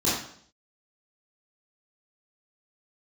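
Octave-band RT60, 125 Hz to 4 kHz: 0.65, 0.65, 0.60, 0.55, 0.55, 0.60 s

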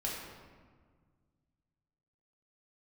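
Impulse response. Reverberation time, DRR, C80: 1.6 s, -5.0 dB, 2.5 dB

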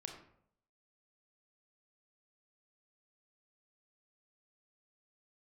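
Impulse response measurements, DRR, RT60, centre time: 2.5 dB, 0.70 s, 27 ms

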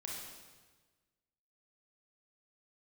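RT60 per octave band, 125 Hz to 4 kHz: 1.6, 1.4, 1.4, 1.3, 1.3, 1.2 s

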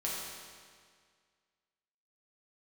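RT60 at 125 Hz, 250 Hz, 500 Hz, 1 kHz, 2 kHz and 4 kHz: 1.9, 1.9, 1.9, 1.9, 1.9, 1.7 s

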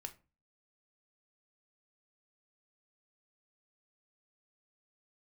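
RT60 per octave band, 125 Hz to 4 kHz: 0.50, 0.45, 0.35, 0.30, 0.25, 0.20 s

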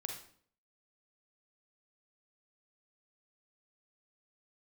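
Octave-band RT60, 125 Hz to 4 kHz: 0.65, 0.65, 0.60, 0.50, 0.50, 0.45 s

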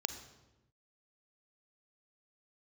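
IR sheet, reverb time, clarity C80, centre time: not exponential, 11.0 dB, 15 ms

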